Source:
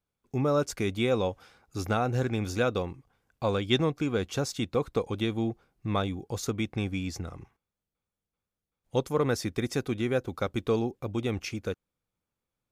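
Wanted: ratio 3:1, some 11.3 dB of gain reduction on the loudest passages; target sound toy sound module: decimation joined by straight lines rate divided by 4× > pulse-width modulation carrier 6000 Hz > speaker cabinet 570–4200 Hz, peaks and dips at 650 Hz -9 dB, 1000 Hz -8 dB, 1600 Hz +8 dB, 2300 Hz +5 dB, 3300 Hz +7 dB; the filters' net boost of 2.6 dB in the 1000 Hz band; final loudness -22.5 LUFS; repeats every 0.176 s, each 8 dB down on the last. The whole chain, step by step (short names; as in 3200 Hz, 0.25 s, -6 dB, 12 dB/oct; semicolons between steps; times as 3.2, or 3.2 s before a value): bell 1000 Hz +8 dB; compressor 3:1, threshold -35 dBFS; feedback echo 0.176 s, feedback 40%, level -8 dB; decimation joined by straight lines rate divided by 4×; pulse-width modulation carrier 6000 Hz; speaker cabinet 570–4200 Hz, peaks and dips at 650 Hz -9 dB, 1000 Hz -8 dB, 1600 Hz +8 dB, 2300 Hz +5 dB, 3300 Hz +7 dB; gain +20 dB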